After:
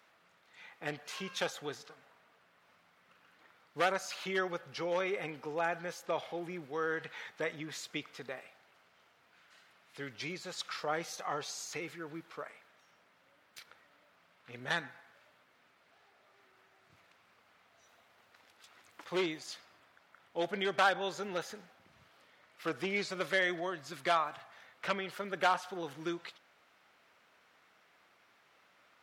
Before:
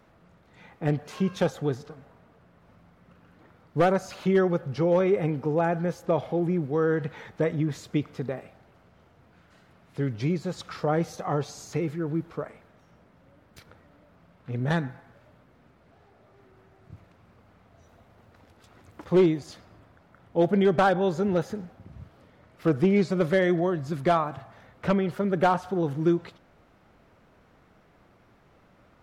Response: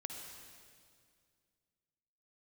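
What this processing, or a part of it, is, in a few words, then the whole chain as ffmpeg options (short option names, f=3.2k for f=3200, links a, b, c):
filter by subtraction: -filter_complex "[0:a]asplit=2[a][b];[b]lowpass=2.7k,volume=-1[c];[a][c]amix=inputs=2:normalize=0"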